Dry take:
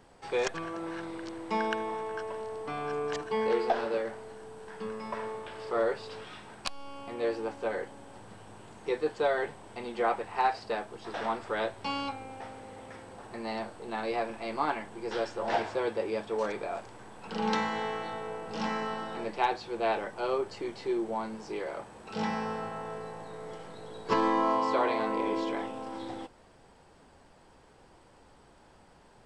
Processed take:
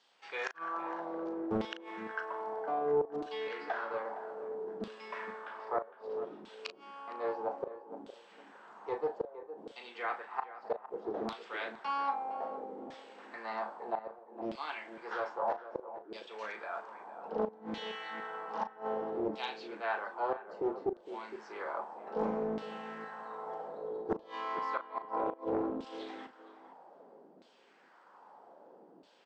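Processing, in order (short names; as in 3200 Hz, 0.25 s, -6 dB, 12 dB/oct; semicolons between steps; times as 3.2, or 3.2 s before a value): elliptic band-pass 180–7200 Hz, stop band 40 dB; bell 2300 Hz -6.5 dB 1.2 oct; in parallel at +1 dB: vocal rider within 4 dB 0.5 s; on the sum: LFO band-pass saw down 0.62 Hz 290–3700 Hz; flipped gate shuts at -22 dBFS, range -27 dB; doubler 37 ms -10 dB; tape echo 0.462 s, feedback 24%, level -11 dB, low-pass 1200 Hz; Doppler distortion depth 0.54 ms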